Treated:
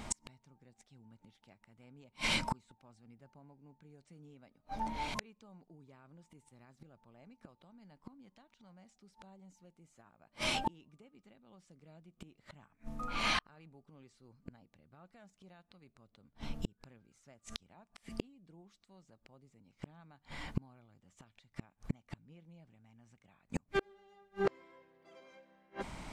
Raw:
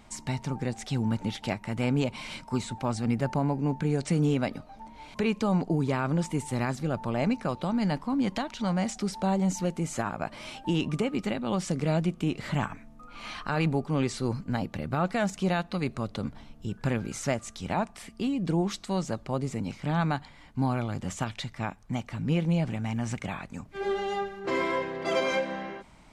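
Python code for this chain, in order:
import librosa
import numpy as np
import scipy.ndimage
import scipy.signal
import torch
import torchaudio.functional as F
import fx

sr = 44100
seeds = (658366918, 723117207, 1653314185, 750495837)

y = fx.gate_flip(x, sr, shuts_db=-28.0, range_db=-40)
y = F.gain(torch.from_numpy(y), 8.0).numpy()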